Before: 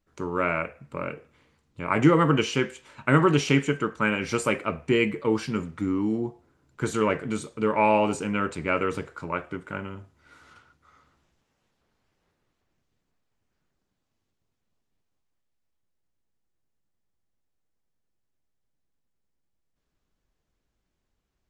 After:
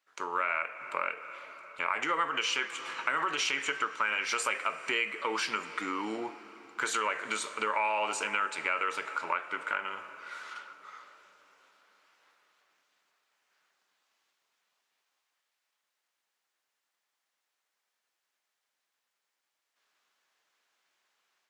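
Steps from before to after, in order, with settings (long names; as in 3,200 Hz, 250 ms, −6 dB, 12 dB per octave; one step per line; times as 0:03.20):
automatic gain control gain up to 5 dB
brickwall limiter −10.5 dBFS, peak gain reduction 7.5 dB
high-pass filter 1,100 Hz 12 dB per octave
high-shelf EQ 6,300 Hz −8.5 dB
convolution reverb RT60 5.0 s, pre-delay 9 ms, DRR 16 dB
downward compressor 3 to 1, threshold −37 dBFS, peak gain reduction 12 dB
level +7.5 dB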